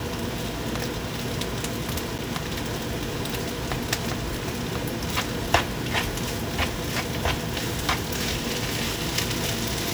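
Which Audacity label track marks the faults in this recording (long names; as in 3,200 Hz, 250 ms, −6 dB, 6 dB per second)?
2.180000	2.190000	drop-out 8.1 ms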